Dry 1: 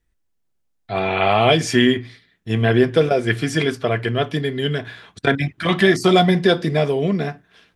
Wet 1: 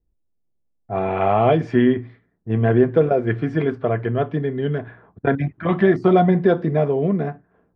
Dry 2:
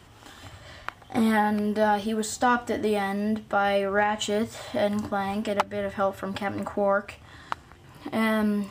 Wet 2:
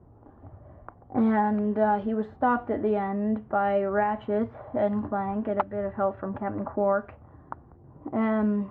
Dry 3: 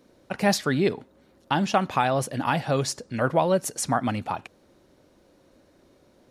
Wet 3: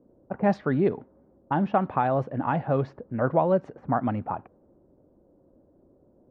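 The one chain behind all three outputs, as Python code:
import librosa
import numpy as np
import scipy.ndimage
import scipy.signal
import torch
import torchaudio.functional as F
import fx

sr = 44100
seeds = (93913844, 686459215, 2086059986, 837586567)

y = scipy.signal.sosfilt(scipy.signal.butter(2, 1200.0, 'lowpass', fs=sr, output='sos'), x)
y = fx.env_lowpass(y, sr, base_hz=630.0, full_db=-17.5)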